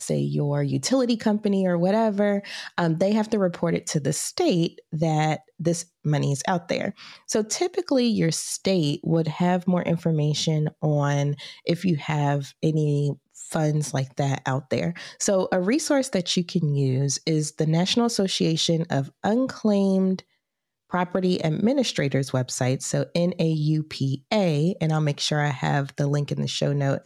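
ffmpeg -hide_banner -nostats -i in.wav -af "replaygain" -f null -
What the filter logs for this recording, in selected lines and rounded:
track_gain = +5.1 dB
track_peak = 0.228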